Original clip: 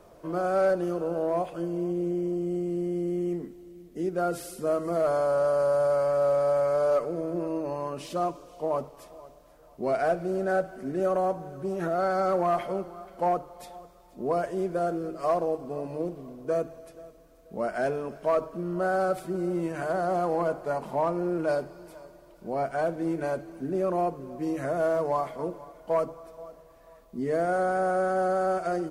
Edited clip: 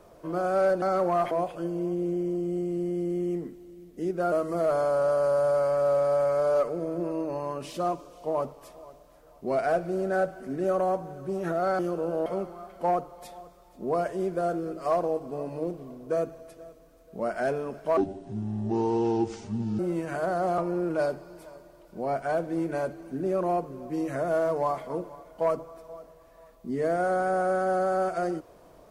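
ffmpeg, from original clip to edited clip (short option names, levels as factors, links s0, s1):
-filter_complex "[0:a]asplit=9[s0][s1][s2][s3][s4][s5][s6][s7][s8];[s0]atrim=end=0.822[s9];[s1]atrim=start=12.148:end=12.642[s10];[s2]atrim=start=1.288:end=4.302[s11];[s3]atrim=start=4.678:end=12.152[s12];[s4]atrim=start=0.818:end=1.292[s13];[s5]atrim=start=12.638:end=18.354[s14];[s6]atrim=start=18.35:end=19.46,asetpts=PTS-STARTPTS,asetrate=26901,aresample=44100[s15];[s7]atrim=start=19.456:end=20.252[s16];[s8]atrim=start=21.068[s17];[s9][s10]acrossfade=d=0.004:c1=hsin:c2=hsin[s18];[s18][s11]acrossfade=d=0.004:c1=hsin:c2=hsin[s19];[s19][s12]acrossfade=d=0.004:c1=hsin:c2=hsin[s20];[s20][s13]acrossfade=d=0.004:c1=hsin:c2=hsin[s21];[s21][s14]acrossfade=d=0.004:c1=hsin:c2=hsin[s22];[s22][s15]acrossfade=d=0.004:c1=hsin:c2=hsin[s23];[s23][s16]acrossfade=d=0.004:c1=hsin:c2=hsin[s24];[s24][s17]acrossfade=d=0.004:c1=hsin:c2=hsin"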